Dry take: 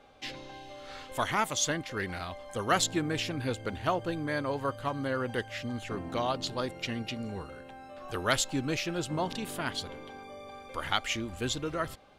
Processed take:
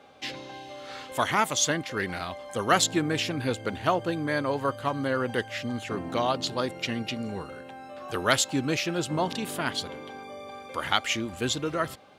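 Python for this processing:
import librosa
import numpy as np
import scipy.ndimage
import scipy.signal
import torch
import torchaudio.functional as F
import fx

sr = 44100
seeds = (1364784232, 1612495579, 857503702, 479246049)

y = scipy.signal.sosfilt(scipy.signal.butter(2, 110.0, 'highpass', fs=sr, output='sos'), x)
y = y * 10.0 ** (4.5 / 20.0)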